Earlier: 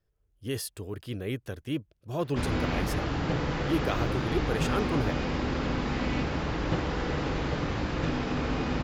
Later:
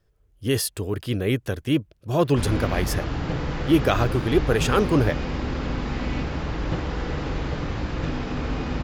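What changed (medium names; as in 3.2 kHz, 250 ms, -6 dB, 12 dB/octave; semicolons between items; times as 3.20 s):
speech +10.0 dB; background: add bass shelf 79 Hz +8.5 dB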